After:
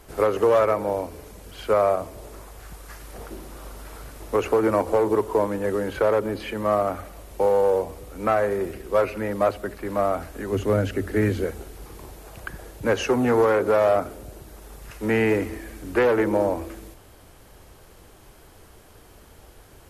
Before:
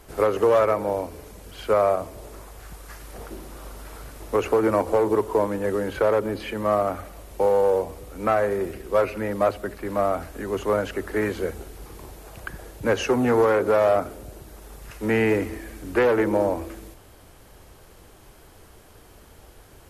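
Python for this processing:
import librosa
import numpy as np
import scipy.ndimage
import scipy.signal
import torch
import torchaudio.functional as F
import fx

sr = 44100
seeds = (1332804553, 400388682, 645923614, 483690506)

y = fx.graphic_eq_15(x, sr, hz=(100, 250, 1000), db=(12, 7, -7), at=(10.52, 11.44))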